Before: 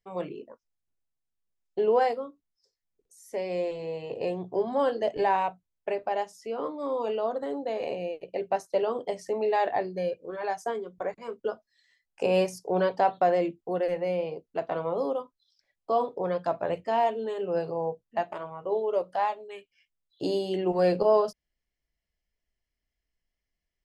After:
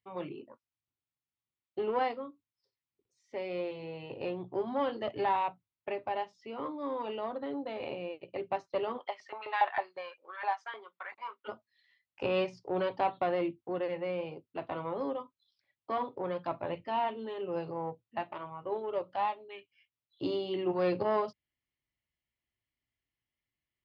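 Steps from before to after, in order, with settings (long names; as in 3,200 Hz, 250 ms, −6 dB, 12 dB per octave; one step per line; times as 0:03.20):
one-sided soft clipper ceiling −16 dBFS
0:08.97–0:11.47: auto-filter high-pass saw up 9.8 Hz → 1.8 Hz 740–1,700 Hz
loudspeaker in its box 100–3,800 Hz, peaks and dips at 110 Hz +7 dB, 190 Hz −7 dB, 460 Hz −10 dB, 680 Hz −8 dB, 1,600 Hz −6 dB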